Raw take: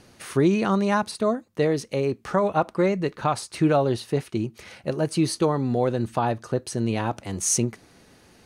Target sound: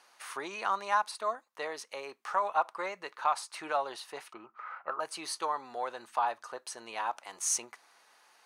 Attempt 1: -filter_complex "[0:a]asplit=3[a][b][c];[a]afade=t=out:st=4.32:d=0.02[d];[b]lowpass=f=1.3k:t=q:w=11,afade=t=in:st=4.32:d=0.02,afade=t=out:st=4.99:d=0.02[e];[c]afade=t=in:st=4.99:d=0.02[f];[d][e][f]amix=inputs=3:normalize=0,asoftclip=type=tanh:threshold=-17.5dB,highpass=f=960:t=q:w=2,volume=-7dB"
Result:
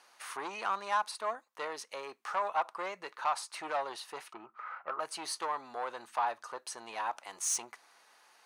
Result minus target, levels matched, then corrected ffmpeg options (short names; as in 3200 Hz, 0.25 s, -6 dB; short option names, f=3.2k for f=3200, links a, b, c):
soft clip: distortion +19 dB
-filter_complex "[0:a]asplit=3[a][b][c];[a]afade=t=out:st=4.32:d=0.02[d];[b]lowpass=f=1.3k:t=q:w=11,afade=t=in:st=4.32:d=0.02,afade=t=out:st=4.99:d=0.02[e];[c]afade=t=in:st=4.99:d=0.02[f];[d][e][f]amix=inputs=3:normalize=0,asoftclip=type=tanh:threshold=-5.5dB,highpass=f=960:t=q:w=2,volume=-7dB"